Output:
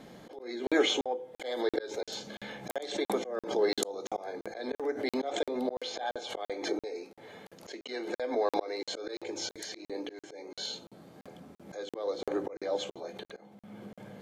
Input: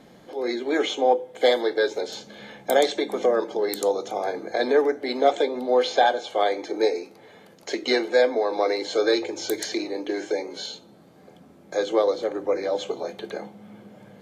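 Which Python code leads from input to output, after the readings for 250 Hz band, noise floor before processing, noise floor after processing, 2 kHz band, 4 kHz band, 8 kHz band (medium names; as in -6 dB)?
-7.0 dB, -51 dBFS, under -85 dBFS, -10.0 dB, -6.5 dB, -5.0 dB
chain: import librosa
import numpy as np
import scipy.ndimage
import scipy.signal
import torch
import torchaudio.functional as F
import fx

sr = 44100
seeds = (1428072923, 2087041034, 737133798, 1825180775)

y = fx.auto_swell(x, sr, attack_ms=503.0)
y = fx.buffer_crackle(y, sr, first_s=0.67, period_s=0.34, block=2048, kind='zero')
y = fx.pre_swell(y, sr, db_per_s=100.0)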